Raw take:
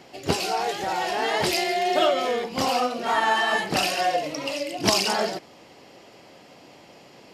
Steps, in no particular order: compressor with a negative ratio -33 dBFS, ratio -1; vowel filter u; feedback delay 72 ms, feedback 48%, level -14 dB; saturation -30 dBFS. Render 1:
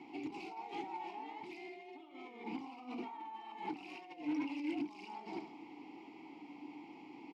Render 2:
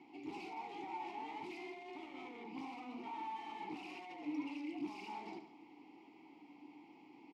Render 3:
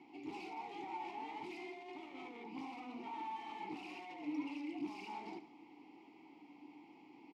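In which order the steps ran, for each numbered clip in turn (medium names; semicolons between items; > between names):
feedback delay > compressor with a negative ratio > vowel filter > saturation; feedback delay > saturation > compressor with a negative ratio > vowel filter; saturation > feedback delay > compressor with a negative ratio > vowel filter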